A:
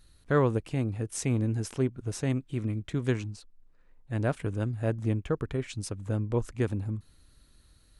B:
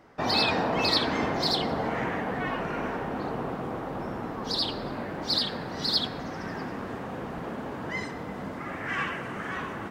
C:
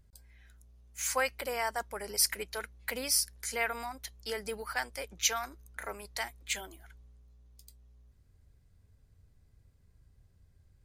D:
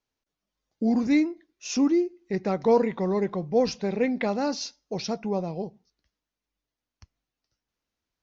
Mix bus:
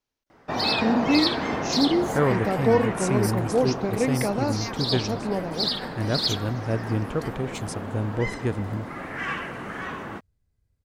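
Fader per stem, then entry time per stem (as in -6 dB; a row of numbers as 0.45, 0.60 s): +2.0, +0.5, -8.5, 0.0 dB; 1.85, 0.30, 1.05, 0.00 s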